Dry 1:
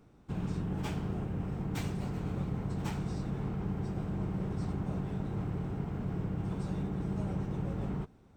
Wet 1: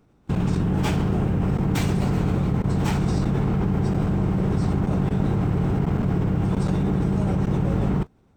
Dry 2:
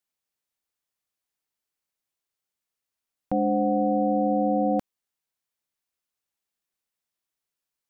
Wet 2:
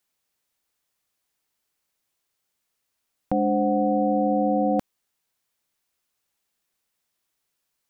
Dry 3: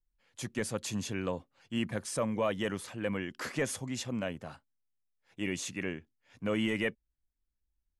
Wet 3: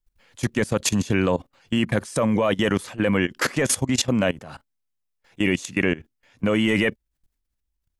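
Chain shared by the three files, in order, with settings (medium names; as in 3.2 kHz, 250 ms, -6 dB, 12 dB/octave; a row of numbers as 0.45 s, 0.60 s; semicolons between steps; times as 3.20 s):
level held to a coarse grid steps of 19 dB; normalise loudness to -23 LUFS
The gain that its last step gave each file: +16.5 dB, +16.5 dB, +18.0 dB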